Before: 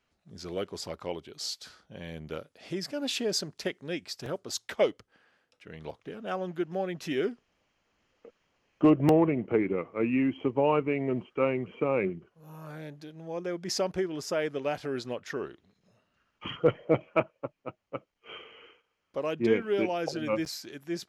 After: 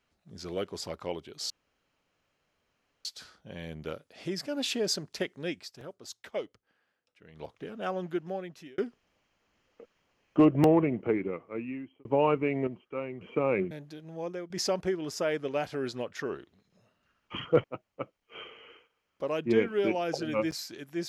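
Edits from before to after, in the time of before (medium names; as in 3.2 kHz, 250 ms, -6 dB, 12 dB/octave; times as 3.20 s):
1.50 s: insert room tone 1.55 s
3.98–5.95 s: dip -9.5 dB, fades 0.18 s
6.54–7.23 s: fade out
9.31–10.50 s: fade out
11.12–11.66 s: gain -9 dB
12.16–12.82 s: delete
13.34–13.61 s: fade out, to -10.5 dB
16.75–17.58 s: delete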